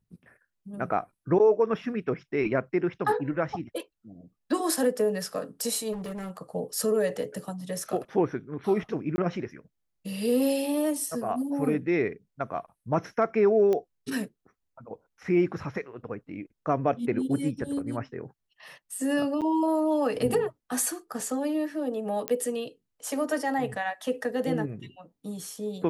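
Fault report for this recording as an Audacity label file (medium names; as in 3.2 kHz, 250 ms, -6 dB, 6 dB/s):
5.920000	6.380000	clipped -32.5 dBFS
9.160000	9.180000	dropout 20 ms
13.730000	13.730000	pop -17 dBFS
19.410000	19.420000	dropout 7.6 ms
22.280000	22.280000	pop -12 dBFS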